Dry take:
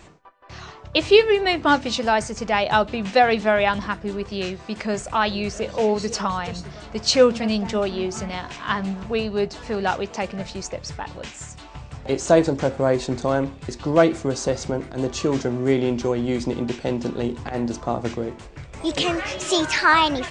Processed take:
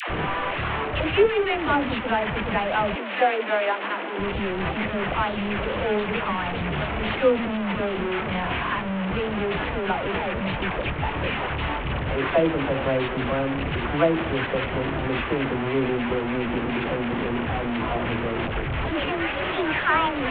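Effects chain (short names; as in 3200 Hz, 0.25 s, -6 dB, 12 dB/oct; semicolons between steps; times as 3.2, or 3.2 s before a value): delta modulation 16 kbps, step -15.5 dBFS; 2.86–4.1 steep high-pass 270 Hz 36 dB/oct; dispersion lows, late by 96 ms, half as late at 600 Hz; gain -4.5 dB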